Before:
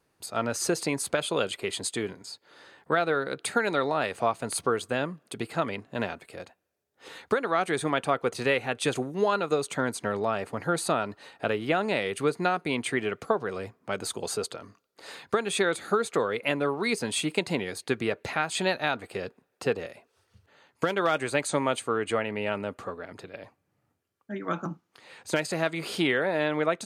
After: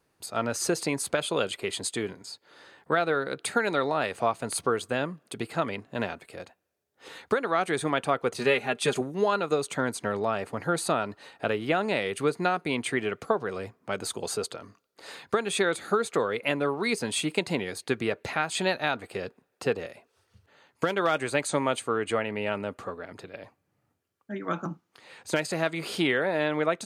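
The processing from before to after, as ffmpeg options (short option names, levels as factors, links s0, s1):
-filter_complex "[0:a]asettb=1/sr,asplit=3[s0][s1][s2];[s0]atrim=end=8.394[s3];[s1]atrim=start=8.39:end=9.01,asetpts=PTS-STARTPTS,afade=t=in:d=0.004:c=qsin,afade=t=out:st=0.616:d=0.004:c=qsin,aecho=1:1:4.9:0.59,atrim=end_sample=27342[s4];[s2]atrim=start=9.006[s5];[s3][s4]acrossfade=d=0.004:c1=hsin:c2=qsin[s6];[s6][s5]acrossfade=d=0.004:c1=qsin:c2=hsin"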